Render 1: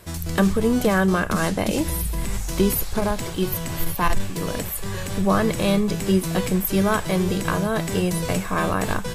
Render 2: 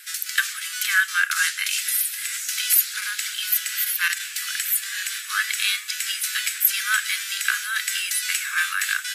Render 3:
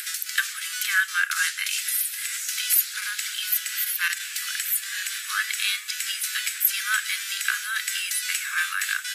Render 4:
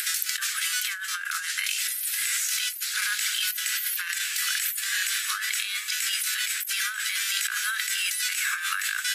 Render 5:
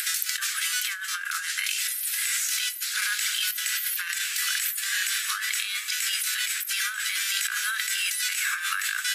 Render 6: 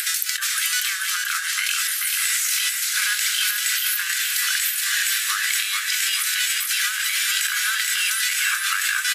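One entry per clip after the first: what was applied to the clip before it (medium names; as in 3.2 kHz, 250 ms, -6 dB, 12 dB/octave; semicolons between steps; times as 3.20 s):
steep high-pass 1.4 kHz 72 dB/octave; trim +8 dB
upward compressor, threshold -23 dBFS; trim -2.5 dB
compressor with a negative ratio -30 dBFS, ratio -1; trim +1.5 dB
reverberation RT60 1.5 s, pre-delay 3 ms, DRR 14.5 dB
feedback delay 436 ms, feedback 57%, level -5 dB; trim +4 dB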